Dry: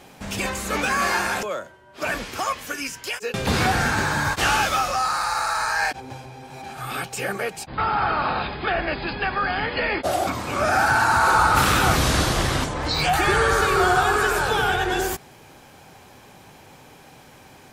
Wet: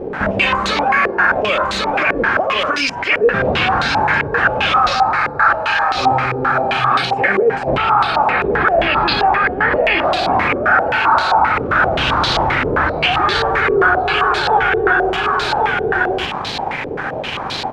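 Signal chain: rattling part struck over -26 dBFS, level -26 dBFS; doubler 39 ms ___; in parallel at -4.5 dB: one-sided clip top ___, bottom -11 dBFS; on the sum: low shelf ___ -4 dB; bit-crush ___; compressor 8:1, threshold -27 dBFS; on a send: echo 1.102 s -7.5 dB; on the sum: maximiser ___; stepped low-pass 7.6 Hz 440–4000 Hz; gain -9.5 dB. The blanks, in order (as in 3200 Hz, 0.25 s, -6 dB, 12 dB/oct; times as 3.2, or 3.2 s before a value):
-13 dB, -16 dBFS, 250 Hz, 7-bit, +26 dB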